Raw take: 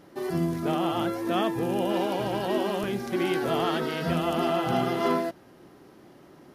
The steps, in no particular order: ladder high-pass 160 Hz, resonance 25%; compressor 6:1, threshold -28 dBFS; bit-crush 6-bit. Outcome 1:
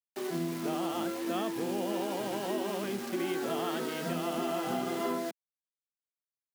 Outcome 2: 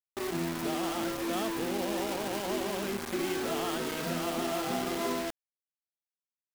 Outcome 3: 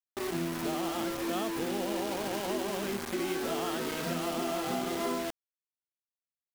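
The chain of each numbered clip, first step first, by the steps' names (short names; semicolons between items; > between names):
bit-crush > ladder high-pass > compressor; ladder high-pass > compressor > bit-crush; ladder high-pass > bit-crush > compressor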